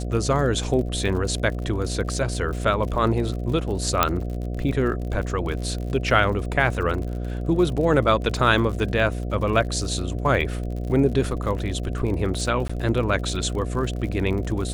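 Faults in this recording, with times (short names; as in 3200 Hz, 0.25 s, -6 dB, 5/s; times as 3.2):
buzz 60 Hz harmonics 12 -28 dBFS
crackle 53/s -31 dBFS
4.03 pop -1 dBFS
12.68–12.7 gap 15 ms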